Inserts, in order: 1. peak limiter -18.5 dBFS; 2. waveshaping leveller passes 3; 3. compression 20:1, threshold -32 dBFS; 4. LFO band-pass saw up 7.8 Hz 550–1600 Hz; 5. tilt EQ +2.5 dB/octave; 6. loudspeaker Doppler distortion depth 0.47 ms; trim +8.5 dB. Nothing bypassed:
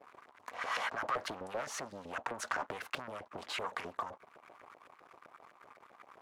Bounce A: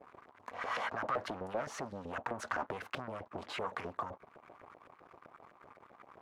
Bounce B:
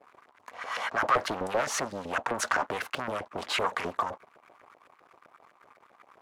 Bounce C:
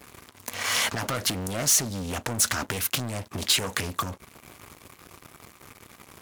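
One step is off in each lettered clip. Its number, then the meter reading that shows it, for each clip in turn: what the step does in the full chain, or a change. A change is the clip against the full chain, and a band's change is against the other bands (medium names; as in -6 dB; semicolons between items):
5, 8 kHz band -8.0 dB; 3, mean gain reduction 6.0 dB; 4, 1 kHz band -13.0 dB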